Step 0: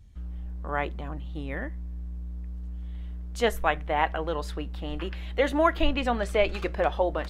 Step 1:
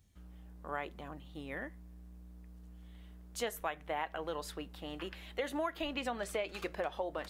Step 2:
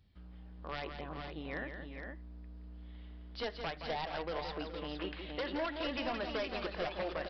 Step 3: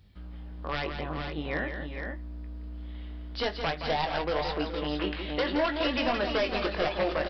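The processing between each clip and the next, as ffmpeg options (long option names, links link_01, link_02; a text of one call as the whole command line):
ffmpeg -i in.wav -af "highpass=frequency=210:poles=1,highshelf=frequency=7400:gain=11.5,acompressor=threshold=-26dB:ratio=6,volume=-6.5dB" out.wav
ffmpeg -i in.wav -af "aresample=11025,aeval=exprs='0.0251*(abs(mod(val(0)/0.0251+3,4)-2)-1)':channel_layout=same,aresample=44100,aecho=1:1:171|417|464:0.422|0.224|0.473,volume=1dB" out.wav
ffmpeg -i in.wav -filter_complex "[0:a]asplit=2[link_01][link_02];[link_02]adelay=20,volume=-7.5dB[link_03];[link_01][link_03]amix=inputs=2:normalize=0,volume=8.5dB" out.wav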